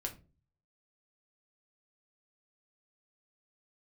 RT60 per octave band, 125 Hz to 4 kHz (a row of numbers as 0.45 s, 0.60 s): 0.70 s, 0.50 s, 0.40 s, 0.25 s, 0.25 s, 0.20 s